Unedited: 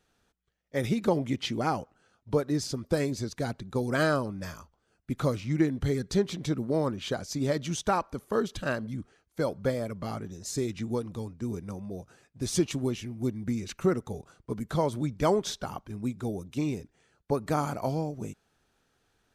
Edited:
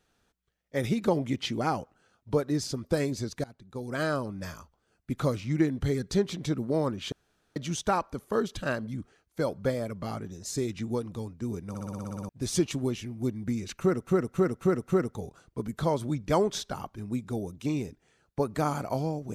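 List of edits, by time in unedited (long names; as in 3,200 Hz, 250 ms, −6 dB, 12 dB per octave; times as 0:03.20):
0:03.44–0:04.44: fade in, from −21.5 dB
0:07.12–0:07.56: fill with room tone
0:11.69: stutter in place 0.06 s, 10 plays
0:13.80–0:14.07: repeat, 5 plays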